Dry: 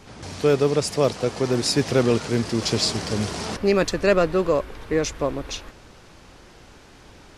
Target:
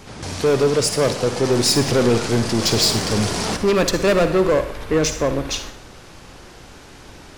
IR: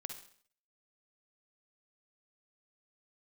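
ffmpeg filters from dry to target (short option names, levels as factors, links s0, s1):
-filter_complex "[0:a]asoftclip=type=tanh:threshold=0.119,aeval=exprs='0.119*(cos(1*acos(clip(val(0)/0.119,-1,1)))-cos(1*PI/2))+0.00266*(cos(7*acos(clip(val(0)/0.119,-1,1)))-cos(7*PI/2))+0.00188*(cos(8*acos(clip(val(0)/0.119,-1,1)))-cos(8*PI/2))':c=same,asplit=2[s0][s1];[1:a]atrim=start_sample=2205,highshelf=f=7700:g=7.5[s2];[s1][s2]afir=irnorm=-1:irlink=0,volume=1.88[s3];[s0][s3]amix=inputs=2:normalize=0"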